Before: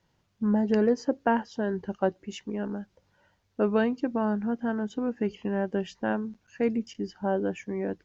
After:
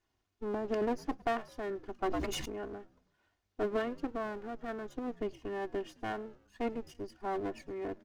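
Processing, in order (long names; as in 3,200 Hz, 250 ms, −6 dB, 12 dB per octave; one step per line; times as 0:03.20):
lower of the sound and its delayed copy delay 2.8 ms
echo with shifted repeats 107 ms, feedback 51%, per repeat −75 Hz, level −23 dB
0:01.99–0:02.59: level that may fall only so fast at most 23 dB per second
level −8 dB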